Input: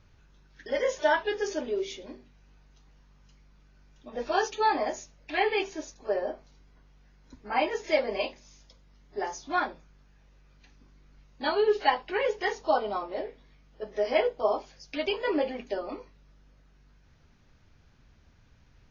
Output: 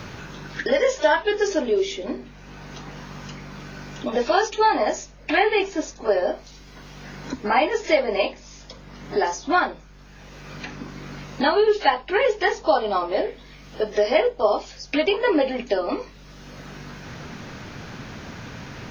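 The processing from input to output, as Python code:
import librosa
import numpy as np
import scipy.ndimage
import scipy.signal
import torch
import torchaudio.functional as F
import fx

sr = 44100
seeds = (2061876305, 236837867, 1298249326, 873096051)

y = fx.band_squash(x, sr, depth_pct=70)
y = F.gain(torch.from_numpy(y), 8.5).numpy()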